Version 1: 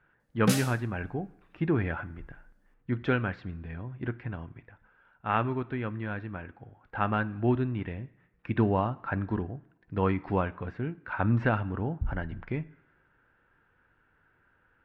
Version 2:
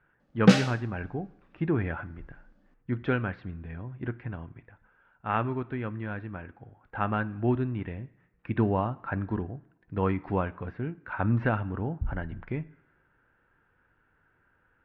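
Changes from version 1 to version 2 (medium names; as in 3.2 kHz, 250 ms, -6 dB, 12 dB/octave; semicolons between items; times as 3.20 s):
background +9.0 dB; master: add distance through air 160 m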